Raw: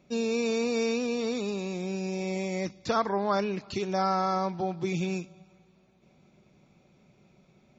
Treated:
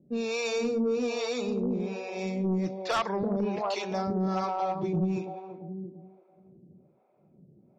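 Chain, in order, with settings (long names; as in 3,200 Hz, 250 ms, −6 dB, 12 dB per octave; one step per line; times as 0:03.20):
high-pass filter 100 Hz
bucket-brigade delay 338 ms, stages 2,048, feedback 43%, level −3 dB
low-pass that shuts in the quiet parts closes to 700 Hz, open at −21.5 dBFS
two-band tremolo in antiphase 1.2 Hz, depth 100%, crossover 480 Hz
sine wavefolder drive 6 dB, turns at −16 dBFS
level −5.5 dB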